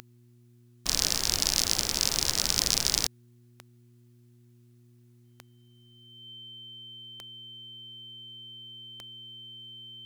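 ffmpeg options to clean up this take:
-af "adeclick=t=4,bandreject=f=120.1:t=h:w=4,bandreject=f=240.2:t=h:w=4,bandreject=f=360.3:t=h:w=4,bandreject=f=3.1k:w=30"

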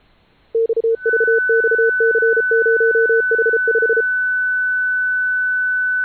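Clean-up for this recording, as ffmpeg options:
-af "bandreject=f=1.5k:w=30,agate=range=-21dB:threshold=-31dB"

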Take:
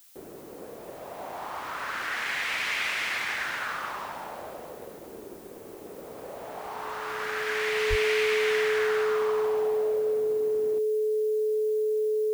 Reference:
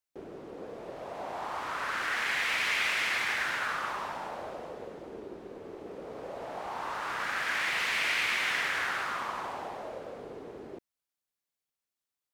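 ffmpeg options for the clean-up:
-filter_complex "[0:a]bandreject=f=430:w=30,asplit=3[a][b][c];[a]afade=t=out:st=7.89:d=0.02[d];[b]highpass=f=140:w=0.5412,highpass=f=140:w=1.3066,afade=t=in:st=7.89:d=0.02,afade=t=out:st=8.01:d=0.02[e];[c]afade=t=in:st=8.01:d=0.02[f];[d][e][f]amix=inputs=3:normalize=0,agate=range=-21dB:threshold=-36dB"

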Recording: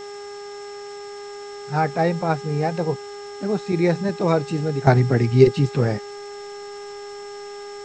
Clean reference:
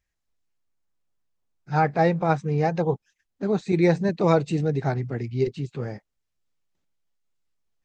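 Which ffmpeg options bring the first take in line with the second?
-af "bandreject=f=407.2:t=h:w=4,bandreject=f=814.4:t=h:w=4,bandreject=f=1.2216k:t=h:w=4,bandreject=f=1.6288k:t=h:w=4,bandreject=f=2.036k:t=h:w=4,bandreject=f=5.4k:w=30,afwtdn=0.0056,asetnsamples=n=441:p=0,asendcmd='4.87 volume volume -11dB',volume=0dB"

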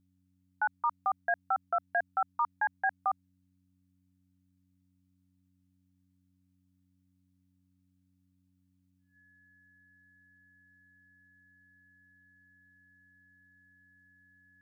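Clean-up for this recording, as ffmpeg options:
-af "bandreject=f=92.3:t=h:w=4,bandreject=f=184.6:t=h:w=4,bandreject=f=276.9:t=h:w=4,bandreject=f=1.7k:w=30"

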